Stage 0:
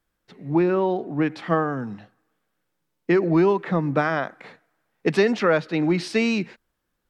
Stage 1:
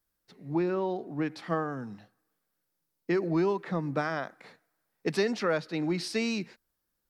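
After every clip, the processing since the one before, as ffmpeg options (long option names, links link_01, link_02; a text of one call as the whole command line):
ffmpeg -i in.wav -af "aexciter=amount=1.9:drive=7.1:freq=4200,volume=-8.5dB" out.wav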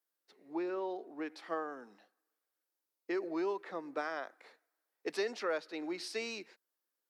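ffmpeg -i in.wav -af "highpass=frequency=320:width=0.5412,highpass=frequency=320:width=1.3066,volume=-6.5dB" out.wav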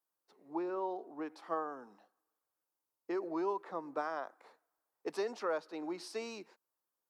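ffmpeg -i in.wav -af "equalizer=frequency=125:width_type=o:width=1:gain=6,equalizer=frequency=1000:width_type=o:width=1:gain=8,equalizer=frequency=2000:width_type=o:width=1:gain=-7,equalizer=frequency=4000:width_type=o:width=1:gain=-4,volume=-2dB" out.wav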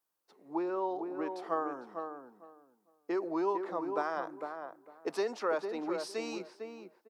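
ffmpeg -i in.wav -filter_complex "[0:a]asplit=2[link_01][link_02];[link_02]adelay=453,lowpass=frequency=1300:poles=1,volume=-5.5dB,asplit=2[link_03][link_04];[link_04]adelay=453,lowpass=frequency=1300:poles=1,volume=0.2,asplit=2[link_05][link_06];[link_06]adelay=453,lowpass=frequency=1300:poles=1,volume=0.2[link_07];[link_01][link_03][link_05][link_07]amix=inputs=4:normalize=0,volume=3.5dB" out.wav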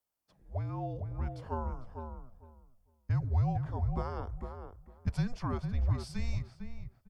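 ffmpeg -i in.wav -af "afreqshift=-240,bandreject=frequency=3900:width=10,asubboost=boost=7:cutoff=110,volume=-3.5dB" out.wav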